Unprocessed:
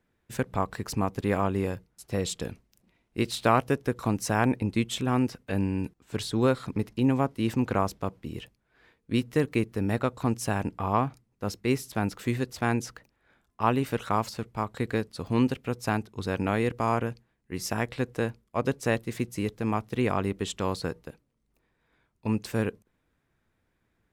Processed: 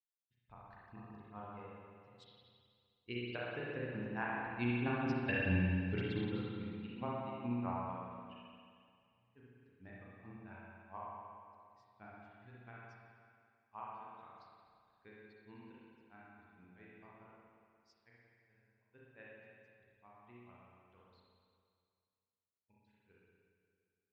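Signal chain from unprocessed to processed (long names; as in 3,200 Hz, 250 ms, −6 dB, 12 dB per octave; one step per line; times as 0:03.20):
spectral dynamics exaggerated over time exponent 1.5
source passing by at 0:05.40, 13 m/s, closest 2 metres
low-pass filter 4,100 Hz 24 dB per octave
tilt shelving filter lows −5 dB, about 670 Hz
brickwall limiter −35.5 dBFS, peak gain reduction 11 dB
granular cloud 150 ms, grains 4.6 per second, spray 28 ms, pitch spread up and down by 0 semitones
spring reverb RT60 2.2 s, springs 33/58 ms, chirp 30 ms, DRR −7 dB
level +9.5 dB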